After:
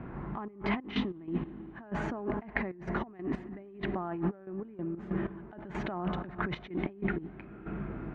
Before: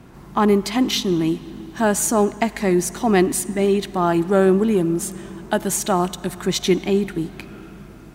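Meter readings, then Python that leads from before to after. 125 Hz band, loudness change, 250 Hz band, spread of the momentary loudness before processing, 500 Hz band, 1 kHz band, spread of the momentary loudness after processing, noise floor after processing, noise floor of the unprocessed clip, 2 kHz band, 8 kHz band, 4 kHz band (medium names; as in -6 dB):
-12.0 dB, -16.5 dB, -15.0 dB, 11 LU, -19.0 dB, -16.0 dB, 8 LU, -50 dBFS, -41 dBFS, -10.0 dB, under -40 dB, -20.0 dB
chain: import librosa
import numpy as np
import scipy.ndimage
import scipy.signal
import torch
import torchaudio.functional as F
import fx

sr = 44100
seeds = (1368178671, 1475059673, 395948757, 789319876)

y = scipy.signal.sosfilt(scipy.signal.butter(4, 2100.0, 'lowpass', fs=sr, output='sos'), x)
y = fx.over_compress(y, sr, threshold_db=-28.0, ratio=-1.0)
y = fx.step_gate(y, sr, bpm=94, pattern='xxx.x.x.x...', floor_db=-12.0, edge_ms=4.5)
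y = y * 10.0 ** (-5.5 / 20.0)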